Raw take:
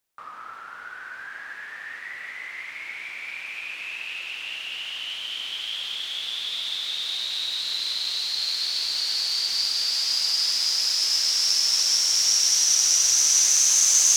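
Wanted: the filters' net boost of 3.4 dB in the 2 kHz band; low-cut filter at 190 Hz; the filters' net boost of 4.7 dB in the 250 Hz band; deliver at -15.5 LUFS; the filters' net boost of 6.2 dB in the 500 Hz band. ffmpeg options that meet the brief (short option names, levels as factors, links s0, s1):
-af "highpass=190,equalizer=f=250:t=o:g=5,equalizer=f=500:t=o:g=6.5,equalizer=f=2000:t=o:g=4,volume=1.88"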